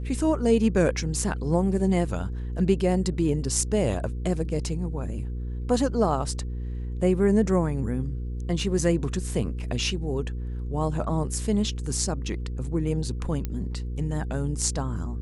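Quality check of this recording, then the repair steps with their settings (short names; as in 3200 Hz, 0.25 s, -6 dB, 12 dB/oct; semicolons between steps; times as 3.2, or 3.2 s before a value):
hum 60 Hz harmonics 8 -31 dBFS
13.45 pop -16 dBFS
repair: de-click; de-hum 60 Hz, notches 8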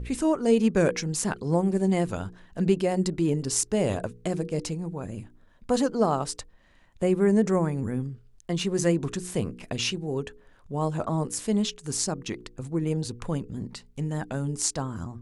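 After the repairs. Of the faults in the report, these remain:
none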